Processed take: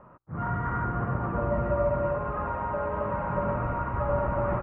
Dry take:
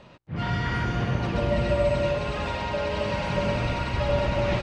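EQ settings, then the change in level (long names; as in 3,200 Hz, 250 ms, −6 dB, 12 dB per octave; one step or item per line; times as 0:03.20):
transistor ladder low-pass 1,400 Hz, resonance 60%
high-frequency loss of the air 280 metres
+7.0 dB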